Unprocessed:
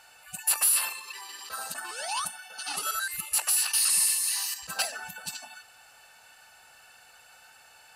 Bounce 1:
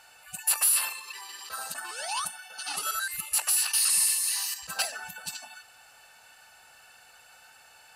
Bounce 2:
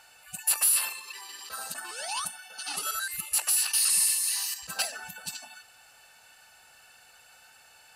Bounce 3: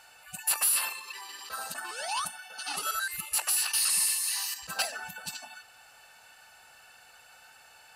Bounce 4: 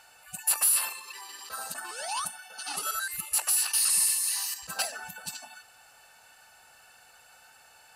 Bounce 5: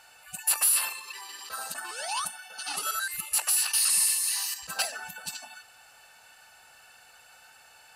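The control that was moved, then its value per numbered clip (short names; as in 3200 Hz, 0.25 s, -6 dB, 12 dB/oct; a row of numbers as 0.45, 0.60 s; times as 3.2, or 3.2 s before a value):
dynamic EQ, frequency: 280, 1000, 9100, 2800, 100 Hz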